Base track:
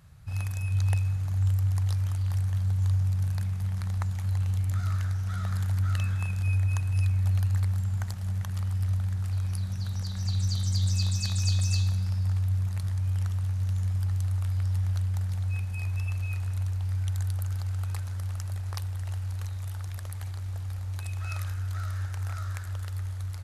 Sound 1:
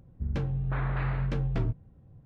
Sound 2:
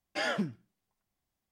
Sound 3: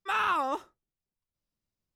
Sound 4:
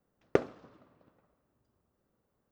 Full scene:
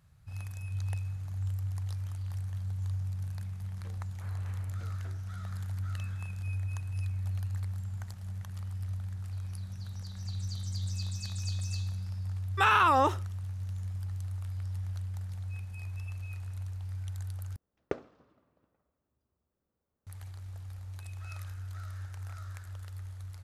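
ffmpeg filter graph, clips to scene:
-filter_complex "[0:a]volume=-9dB[a];[1:a]highpass=370[b];[3:a]alimiter=level_in=24dB:limit=-1dB:release=50:level=0:latency=1[c];[4:a]equalizer=f=71:t=o:w=0.45:g=9.5[d];[a]asplit=2[e][f];[e]atrim=end=17.564[g];[d]atrim=end=2.51,asetpts=PTS-STARTPTS,volume=-8dB[h];[f]atrim=start=20.066[i];[b]atrim=end=2.25,asetpts=PTS-STARTPTS,volume=-17.5dB,afade=t=in:d=0.004:c=hsin,afade=t=out:st=2.246:d=0.004:c=hsin,adelay=153909S[j];[c]atrim=end=1.95,asetpts=PTS-STARTPTS,volume=-14.5dB,afade=t=in:d=0.004:c=hsin,afade=t=out:st=1.946:d=0.004:c=hsin,adelay=552132S[k];[g][h]acrossfade=d=0.004:c1=hsin:c2=hsin[l];[l][i]acrossfade=d=0.004:c1=hsin:c2=hsin[m];[m][j][k]amix=inputs=3:normalize=0"

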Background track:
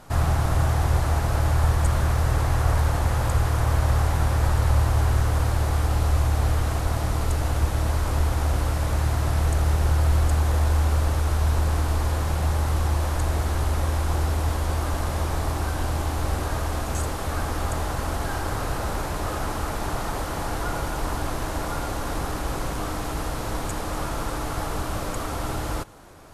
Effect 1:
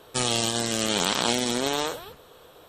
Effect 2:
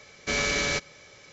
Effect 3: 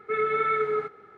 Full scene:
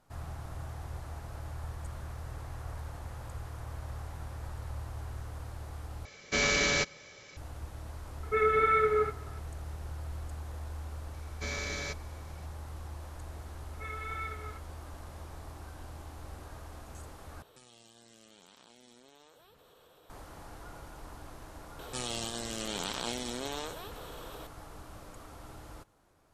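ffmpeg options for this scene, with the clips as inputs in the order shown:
-filter_complex "[2:a]asplit=2[a][b];[3:a]asplit=2[c][d];[1:a]asplit=2[e][f];[0:a]volume=-20dB[g];[b]bandreject=f=2.9k:w=7.7[h];[d]aderivative[i];[e]acompressor=threshold=-47dB:ratio=6:attack=3.2:release=140:knee=1:detection=peak[j];[f]acompressor=mode=upward:threshold=-30dB:ratio=4:attack=11:release=27:knee=2.83:detection=peak[k];[g]asplit=3[l][m][n];[l]atrim=end=6.054[o];[a]atrim=end=1.32,asetpts=PTS-STARTPTS,volume=-1dB[p];[m]atrim=start=7.366:end=17.424[q];[j]atrim=end=2.68,asetpts=PTS-STARTPTS,volume=-9dB[r];[n]atrim=start=20.096[s];[c]atrim=end=1.17,asetpts=PTS-STARTPTS,volume=-0.5dB,afade=t=in:d=0.004:c=hsin,afade=t=out:st=1.166:d=0.004:c=hsin,adelay=8230[t];[h]atrim=end=1.32,asetpts=PTS-STARTPTS,volume=-11dB,afade=t=in:d=0.004:c=hsin,afade=t=out:st=1.316:d=0.004:c=hsin,adelay=491274S[u];[i]atrim=end=1.17,asetpts=PTS-STARTPTS,afade=t=in:d=0.004:c=hsin,afade=t=out:st=1.166:d=0.004:c=hsin,adelay=13710[v];[k]atrim=end=2.68,asetpts=PTS-STARTPTS,volume=-12dB,afade=t=in:d=0.004:c=hsin,afade=t=out:st=2.676:d=0.004:c=hsin,adelay=21790[w];[o][p]acrossfade=d=0.004:c1=hsin:c2=hsin[x];[x][q]acrossfade=d=0.004:c1=hsin:c2=hsin[y];[y][r]acrossfade=d=0.004:c1=hsin:c2=hsin[z];[z][s]acrossfade=d=0.004:c1=hsin:c2=hsin[aa];[aa][t][u][v][w]amix=inputs=5:normalize=0"

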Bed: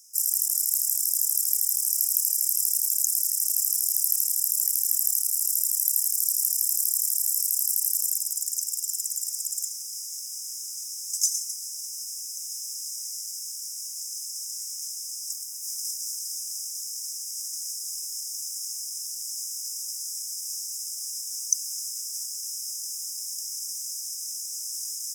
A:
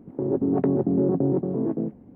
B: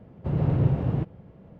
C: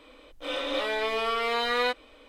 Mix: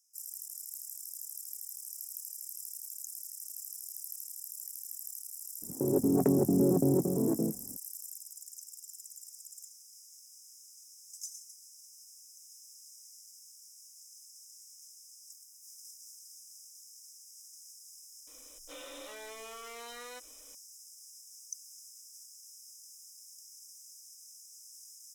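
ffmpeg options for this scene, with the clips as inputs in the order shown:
-filter_complex "[0:a]volume=-19dB[a];[3:a]acompressor=threshold=-33dB:ratio=6:attack=3.2:release=140:knee=1:detection=peak[b];[1:a]atrim=end=2.15,asetpts=PTS-STARTPTS,volume=-4dB,afade=t=in:d=0.004:c=hsin,afade=t=out:st=2.146:d=0.004:c=hsin,adelay=5620[c];[b]atrim=end=2.28,asetpts=PTS-STARTPTS,volume=-10.5dB,afade=t=in:d=0.004:c=hsin,afade=t=out:st=2.276:d=0.004:c=hsin,adelay=18270[d];[a][c][d]amix=inputs=3:normalize=0"

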